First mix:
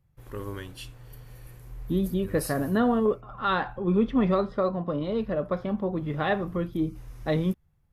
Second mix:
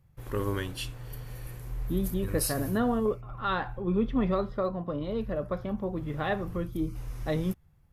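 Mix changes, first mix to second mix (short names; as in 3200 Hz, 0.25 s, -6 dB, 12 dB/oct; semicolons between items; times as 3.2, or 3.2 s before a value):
first voice +5.5 dB; second voice -4.0 dB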